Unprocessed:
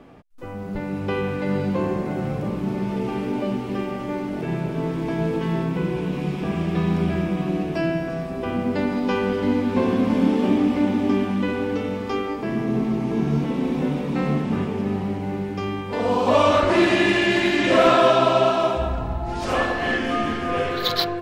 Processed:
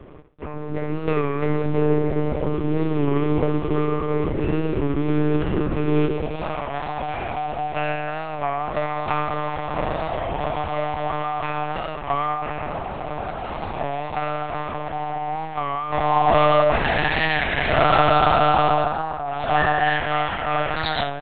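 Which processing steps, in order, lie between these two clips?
comb filter 5.2 ms, depth 53%
in parallel at −2 dB: brickwall limiter −14 dBFS, peak gain reduction 10.5 dB
on the sum: hard clipping −12.5 dBFS, distortion −13 dB
high-pass filter sweep 290 Hz → 710 Hz, 0:05.81–0:06.66
on a send: flutter between parallel walls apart 11.5 metres, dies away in 0.41 s
on the sum: one-pitch LPC vocoder at 8 kHz 150 Hz
wow of a warped record 33 1/3 rpm, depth 100 cents
level −4 dB

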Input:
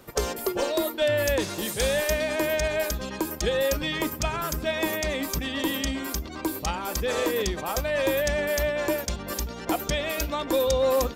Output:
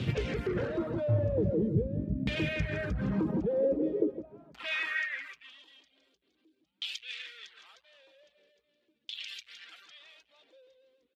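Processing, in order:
on a send: repeating echo 162 ms, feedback 42%, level −9 dB
on the sum: dynamic equaliser 460 Hz, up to +8 dB, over −42 dBFS, Q 5.2
in parallel at −6 dB: fuzz pedal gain 49 dB, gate −57 dBFS
on the sum: guitar amp tone stack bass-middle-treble 10-0-1
downward compressor 3 to 1, threshold −30 dBFS, peak gain reduction 5 dB
high-pass filter sweep 120 Hz → 3,400 Hz, 0:03.04–0:05.63
reverb reduction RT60 0.61 s
auto-filter low-pass saw down 0.44 Hz 220–3,200 Hz
level +8 dB

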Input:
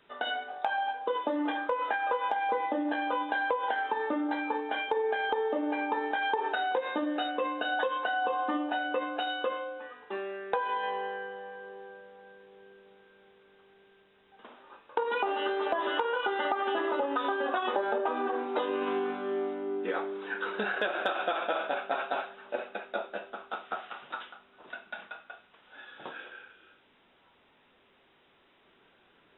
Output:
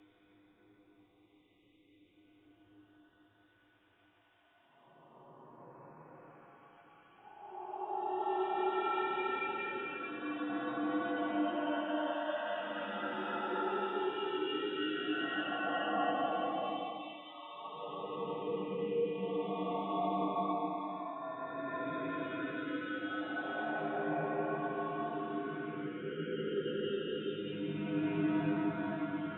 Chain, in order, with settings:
time-frequency cells dropped at random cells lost 73%
extreme stretch with random phases 5.1×, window 0.50 s, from 0:13.34
frequency shifter −89 Hz

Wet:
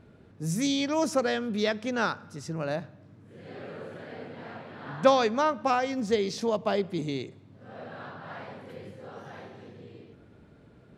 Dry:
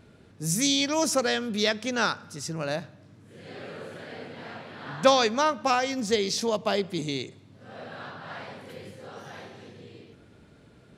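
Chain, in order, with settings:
high-shelf EQ 2,700 Hz −11.5 dB

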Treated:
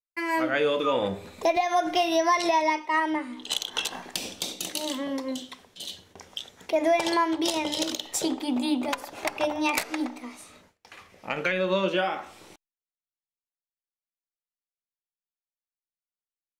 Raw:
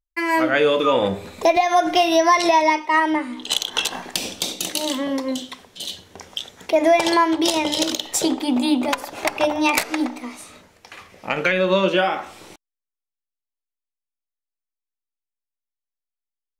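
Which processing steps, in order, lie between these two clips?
noise gate with hold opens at −40 dBFS
level −7 dB

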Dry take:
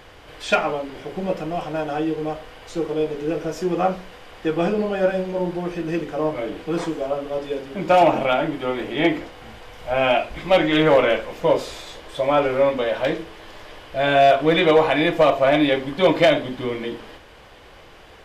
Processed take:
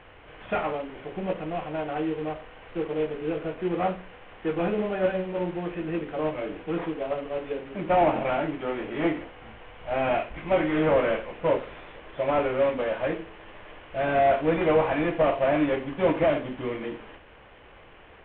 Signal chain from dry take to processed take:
variable-slope delta modulation 16 kbit/s
level −4.5 dB

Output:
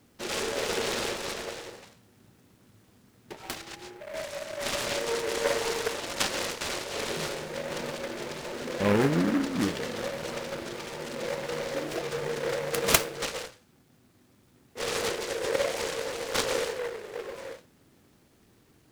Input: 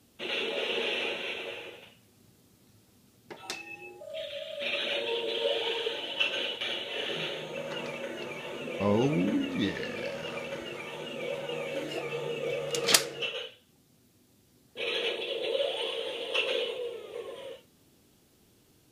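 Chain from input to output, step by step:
in parallel at −9 dB: decimation without filtering 10×
on the sum: short delay modulated by noise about 1,200 Hz, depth 0.12 ms

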